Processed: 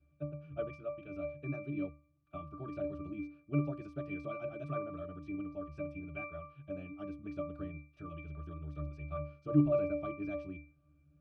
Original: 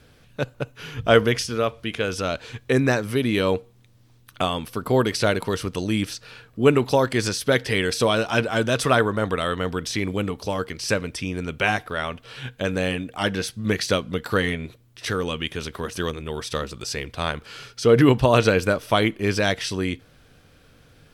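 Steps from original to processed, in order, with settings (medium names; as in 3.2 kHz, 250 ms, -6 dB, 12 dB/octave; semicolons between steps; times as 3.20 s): time stretch by phase-locked vocoder 0.53×; pitch-class resonator D, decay 0.4 s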